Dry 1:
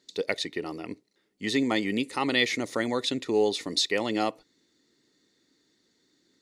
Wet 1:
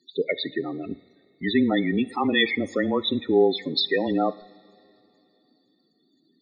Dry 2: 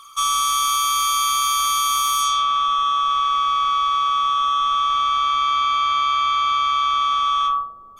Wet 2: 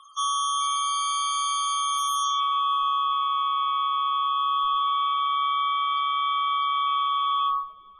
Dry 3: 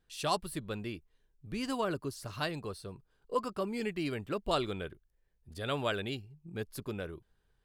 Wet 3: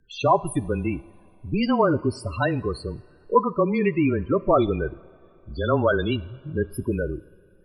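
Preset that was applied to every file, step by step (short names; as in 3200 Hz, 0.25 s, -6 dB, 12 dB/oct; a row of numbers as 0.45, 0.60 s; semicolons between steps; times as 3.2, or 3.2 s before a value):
loudest bins only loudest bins 16; two-slope reverb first 0.6 s, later 3.1 s, from -14 dB, DRR 16.5 dB; frequency shift -20 Hz; match loudness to -24 LUFS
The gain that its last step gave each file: +5.0, -6.0, +14.0 dB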